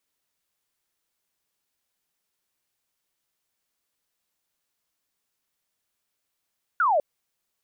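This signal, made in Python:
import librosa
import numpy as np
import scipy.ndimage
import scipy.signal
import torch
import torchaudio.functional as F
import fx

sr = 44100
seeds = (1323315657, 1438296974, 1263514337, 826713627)

y = fx.laser_zap(sr, level_db=-18, start_hz=1500.0, end_hz=550.0, length_s=0.2, wave='sine')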